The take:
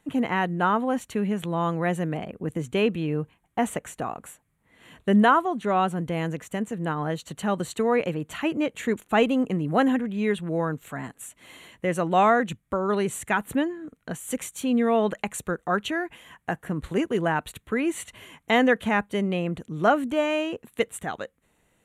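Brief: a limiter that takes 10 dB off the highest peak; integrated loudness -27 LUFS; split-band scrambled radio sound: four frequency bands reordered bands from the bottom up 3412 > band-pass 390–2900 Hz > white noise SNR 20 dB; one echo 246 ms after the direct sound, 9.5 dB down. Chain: peak limiter -18 dBFS; delay 246 ms -9.5 dB; four frequency bands reordered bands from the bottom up 3412; band-pass 390–2900 Hz; white noise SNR 20 dB; trim +2.5 dB

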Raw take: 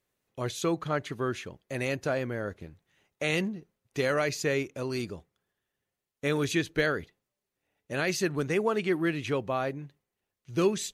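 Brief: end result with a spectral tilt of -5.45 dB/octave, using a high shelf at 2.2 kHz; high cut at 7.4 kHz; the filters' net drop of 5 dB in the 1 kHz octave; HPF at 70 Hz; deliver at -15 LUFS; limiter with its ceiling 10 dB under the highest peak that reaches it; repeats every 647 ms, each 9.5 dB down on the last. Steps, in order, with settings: high-pass 70 Hz; low-pass 7.4 kHz; peaking EQ 1 kHz -5.5 dB; treble shelf 2.2 kHz -5.5 dB; peak limiter -24 dBFS; feedback delay 647 ms, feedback 33%, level -9.5 dB; trim +20.5 dB

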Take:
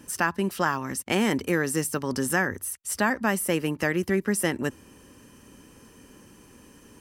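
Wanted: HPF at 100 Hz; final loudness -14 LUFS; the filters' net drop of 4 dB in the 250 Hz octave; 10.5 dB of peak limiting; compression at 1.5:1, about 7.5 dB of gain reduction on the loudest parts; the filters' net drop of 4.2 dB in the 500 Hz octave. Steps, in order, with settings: high-pass 100 Hz; peaking EQ 250 Hz -4 dB; peaking EQ 500 Hz -4 dB; compression 1.5:1, threshold -41 dBFS; trim +23 dB; peak limiter -3 dBFS

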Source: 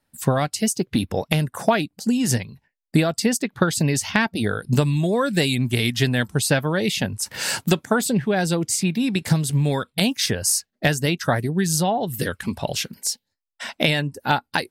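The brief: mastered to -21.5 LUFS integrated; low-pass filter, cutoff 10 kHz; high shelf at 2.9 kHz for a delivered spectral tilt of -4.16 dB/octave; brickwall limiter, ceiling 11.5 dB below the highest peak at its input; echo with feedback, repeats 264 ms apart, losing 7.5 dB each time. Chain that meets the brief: low-pass 10 kHz; treble shelf 2.9 kHz +3.5 dB; peak limiter -13.5 dBFS; feedback delay 264 ms, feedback 42%, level -7.5 dB; trim +1.5 dB

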